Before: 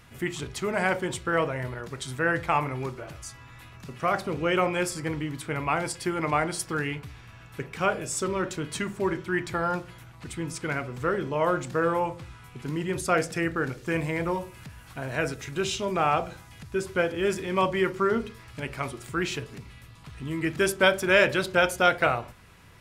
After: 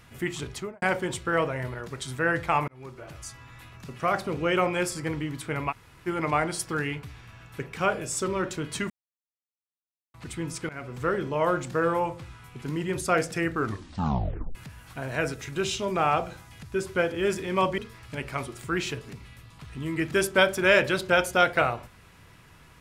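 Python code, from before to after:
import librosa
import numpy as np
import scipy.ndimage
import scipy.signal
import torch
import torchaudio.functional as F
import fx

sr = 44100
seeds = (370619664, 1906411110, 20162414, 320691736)

y = fx.studio_fade_out(x, sr, start_s=0.51, length_s=0.31)
y = fx.edit(y, sr, fx.fade_in_span(start_s=2.68, length_s=0.53),
    fx.room_tone_fill(start_s=5.71, length_s=0.36, crossfade_s=0.04),
    fx.silence(start_s=8.9, length_s=1.24),
    fx.fade_in_from(start_s=10.69, length_s=0.38, curve='qsin', floor_db=-20.5),
    fx.tape_stop(start_s=13.52, length_s=1.03),
    fx.cut(start_s=17.78, length_s=0.45), tone=tone)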